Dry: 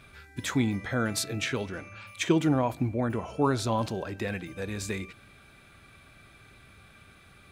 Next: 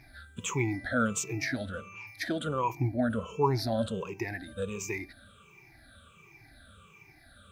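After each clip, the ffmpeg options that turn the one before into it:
ffmpeg -i in.wav -af "afftfilt=real='re*pow(10,24/40*sin(2*PI*(0.75*log(max(b,1)*sr/1024/100)/log(2)-(-1.4)*(pts-256)/sr)))':imag='im*pow(10,24/40*sin(2*PI*(0.75*log(max(b,1)*sr/1024/100)/log(2)-(-1.4)*(pts-256)/sr)))':win_size=1024:overlap=0.75,acrusher=bits=11:mix=0:aa=0.000001,volume=-7.5dB" out.wav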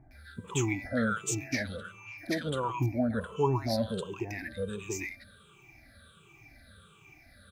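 ffmpeg -i in.wav -filter_complex "[0:a]acrossover=split=1100[link_01][link_02];[link_02]adelay=110[link_03];[link_01][link_03]amix=inputs=2:normalize=0" out.wav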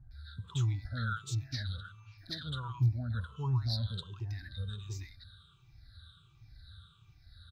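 ffmpeg -i in.wav -af "firequalizer=gain_entry='entry(110,0);entry(200,-20);entry(520,-29);entry(1400,-9);entry(2300,-29);entry(3800,1);entry(6400,-20)':delay=0.05:min_phase=1,volume=5.5dB" out.wav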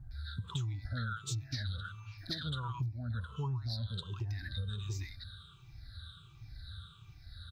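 ffmpeg -i in.wav -af "acompressor=threshold=-40dB:ratio=8,volume=6dB" out.wav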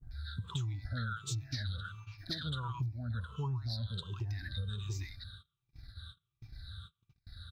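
ffmpeg -i in.wav -af "agate=range=-30dB:threshold=-49dB:ratio=16:detection=peak" out.wav

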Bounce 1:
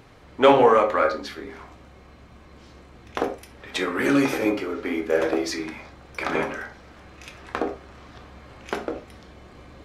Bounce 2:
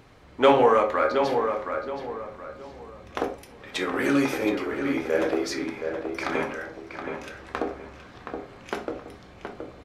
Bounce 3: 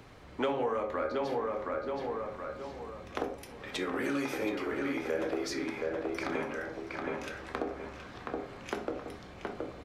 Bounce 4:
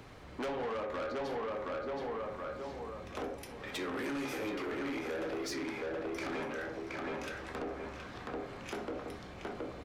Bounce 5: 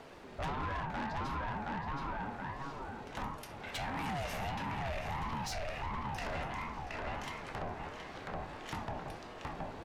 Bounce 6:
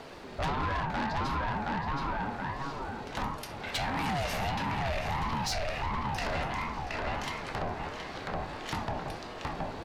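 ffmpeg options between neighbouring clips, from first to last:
ffmpeg -i in.wav -filter_complex "[0:a]asplit=2[link_01][link_02];[link_02]adelay=722,lowpass=frequency=2400:poles=1,volume=-6dB,asplit=2[link_03][link_04];[link_04]adelay=722,lowpass=frequency=2400:poles=1,volume=0.34,asplit=2[link_05][link_06];[link_06]adelay=722,lowpass=frequency=2400:poles=1,volume=0.34,asplit=2[link_07][link_08];[link_08]adelay=722,lowpass=frequency=2400:poles=1,volume=0.34[link_09];[link_01][link_03][link_05][link_07][link_09]amix=inputs=5:normalize=0,volume=-2.5dB" out.wav
ffmpeg -i in.wav -filter_complex "[0:a]acrossover=split=170|520[link_01][link_02][link_03];[link_01]acompressor=threshold=-50dB:ratio=4[link_04];[link_02]acompressor=threshold=-35dB:ratio=4[link_05];[link_03]acompressor=threshold=-37dB:ratio=4[link_06];[link_04][link_05][link_06]amix=inputs=3:normalize=0" out.wav
ffmpeg -i in.wav -af "asoftclip=type=tanh:threshold=-34.5dB,volume=1dB" out.wav
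ffmpeg -i in.wav -af "aeval=exprs='val(0)*sin(2*PI*430*n/s+430*0.3/1.5*sin(2*PI*1.5*n/s))':channel_layout=same,volume=2.5dB" out.wav
ffmpeg -i in.wav -af "equalizer=frequency=4400:width=2.3:gain=4.5,volume=6dB" out.wav

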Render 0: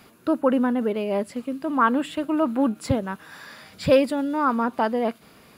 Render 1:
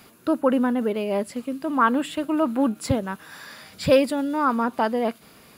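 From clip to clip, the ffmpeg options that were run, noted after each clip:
ffmpeg -i in.wav -af "highshelf=frequency=4600:gain=5.5" out.wav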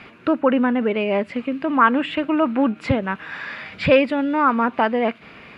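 ffmpeg -i in.wav -filter_complex "[0:a]asplit=2[link_01][link_02];[link_02]acompressor=threshold=-29dB:ratio=6,volume=1dB[link_03];[link_01][link_03]amix=inputs=2:normalize=0,lowpass=frequency=2400:width_type=q:width=2.5" out.wav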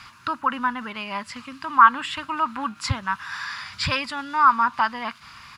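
ffmpeg -i in.wav -af "firequalizer=gain_entry='entry(110,0);entry(170,-10);entry(430,-24);entry(680,-15);entry(1000,5);entry(2300,-6);entry(5100,15)':delay=0.05:min_phase=1" out.wav

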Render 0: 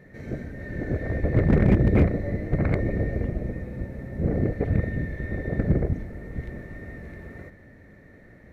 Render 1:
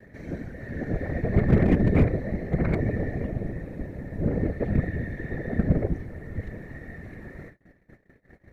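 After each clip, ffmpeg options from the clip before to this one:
ffmpeg -i in.wav -af "acompressor=mode=upward:threshold=-41dB:ratio=2.5,afftfilt=real='hypot(re,im)*cos(2*PI*random(0))':imag='hypot(re,im)*sin(2*PI*random(1))':win_size=512:overlap=0.75,agate=range=-40dB:threshold=-51dB:ratio=16:detection=peak,volume=5dB" out.wav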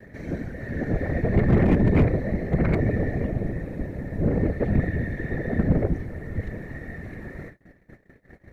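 ffmpeg -i in.wav -af "asoftclip=type=tanh:threshold=-15.5dB,volume=4dB" out.wav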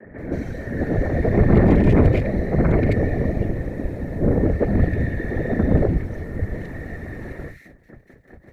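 ffmpeg -i in.wav -filter_complex "[0:a]acrossover=split=160|2000[link_01][link_02][link_03];[link_01]adelay=40[link_04];[link_03]adelay=180[link_05];[link_04][link_02][link_05]amix=inputs=3:normalize=0,volume=5.5dB" out.wav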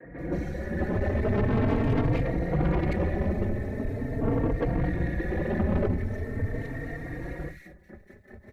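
ffmpeg -i in.wav -filter_complex "[0:a]asoftclip=type=tanh:threshold=-19.5dB,asplit=2[link_01][link_02];[link_02]adelay=3.8,afreqshift=0.42[link_03];[link_01][link_03]amix=inputs=2:normalize=1,volume=1dB" out.wav

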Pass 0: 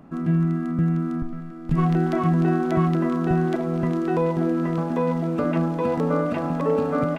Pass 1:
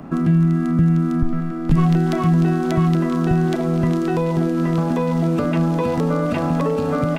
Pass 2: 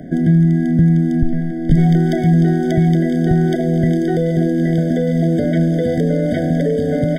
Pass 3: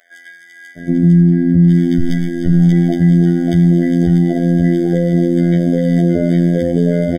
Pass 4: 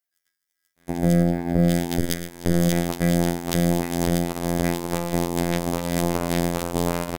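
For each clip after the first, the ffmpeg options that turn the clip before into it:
ffmpeg -i in.wav -filter_complex "[0:a]asplit=2[link_01][link_02];[link_02]alimiter=limit=-18.5dB:level=0:latency=1,volume=-0.5dB[link_03];[link_01][link_03]amix=inputs=2:normalize=0,acrossover=split=140|3000[link_04][link_05][link_06];[link_05]acompressor=threshold=-25dB:ratio=6[link_07];[link_04][link_07][link_06]amix=inputs=3:normalize=0,volume=6dB" out.wav
ffmpeg -i in.wav -af "afftfilt=real='re*eq(mod(floor(b*sr/1024/750),2),0)':imag='im*eq(mod(floor(b*sr/1024/750),2),0)':win_size=1024:overlap=0.75,volume=3.5dB" out.wav
ffmpeg -i in.wav -filter_complex "[0:a]acrossover=split=1100[link_01][link_02];[link_01]adelay=770[link_03];[link_03][link_02]amix=inputs=2:normalize=0,afftfilt=real='hypot(re,im)*cos(PI*b)':imag='0':win_size=2048:overlap=0.75,alimiter=level_in=5.5dB:limit=-1dB:release=50:level=0:latency=1,volume=-1dB" out.wav
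ffmpeg -i in.wav -af "aeval=exprs='val(0)+0.5*0.075*sgn(val(0))':channel_layout=same,aeval=exprs='0.841*(cos(1*acos(clip(val(0)/0.841,-1,1)))-cos(1*PI/2))+0.266*(cos(3*acos(clip(val(0)/0.841,-1,1)))-cos(3*PI/2))+0.00668*(cos(7*acos(clip(val(0)/0.841,-1,1)))-cos(7*PI/2))':channel_layout=same,aemphasis=mode=production:type=75fm,volume=-6dB" out.wav

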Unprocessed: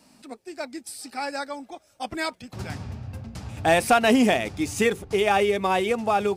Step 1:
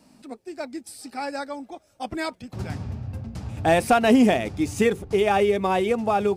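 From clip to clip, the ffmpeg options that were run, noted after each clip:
ffmpeg -i in.wav -af "tiltshelf=frequency=780:gain=3.5" out.wav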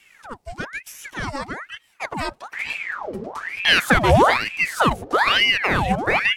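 ffmpeg -i in.wav -af "aeval=exprs='val(0)*sin(2*PI*1400*n/s+1400*0.8/1.1*sin(2*PI*1.1*n/s))':channel_layout=same,volume=5dB" out.wav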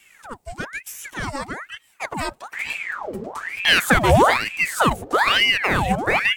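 ffmpeg -i in.wav -af "aexciter=amount=1.8:drive=6.2:freq=7100" out.wav

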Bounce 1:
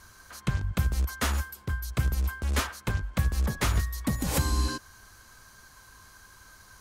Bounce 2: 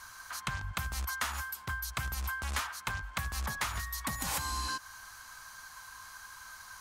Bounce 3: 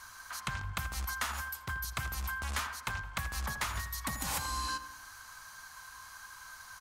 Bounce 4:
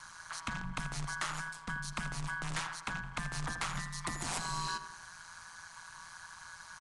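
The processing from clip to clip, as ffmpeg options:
ffmpeg -i in.wav -af "lowshelf=frequency=640:width_type=q:width=1.5:gain=-11.5,acompressor=threshold=-35dB:ratio=6,volume=3.5dB" out.wav
ffmpeg -i in.wav -filter_complex "[0:a]asplit=2[link_01][link_02];[link_02]adelay=82,lowpass=frequency=2100:poles=1,volume=-10dB,asplit=2[link_03][link_04];[link_04]adelay=82,lowpass=frequency=2100:poles=1,volume=0.53,asplit=2[link_05][link_06];[link_06]adelay=82,lowpass=frequency=2100:poles=1,volume=0.53,asplit=2[link_07][link_08];[link_08]adelay=82,lowpass=frequency=2100:poles=1,volume=0.53,asplit=2[link_09][link_10];[link_10]adelay=82,lowpass=frequency=2100:poles=1,volume=0.53,asplit=2[link_11][link_12];[link_12]adelay=82,lowpass=frequency=2100:poles=1,volume=0.53[link_13];[link_01][link_03][link_05][link_07][link_09][link_11][link_13]amix=inputs=7:normalize=0,volume=-1dB" out.wav
ffmpeg -i in.wav -af "aeval=exprs='val(0)*sin(2*PI*85*n/s)':channel_layout=same,asoftclip=type=tanh:threshold=-27dB,aresample=22050,aresample=44100,volume=2.5dB" out.wav

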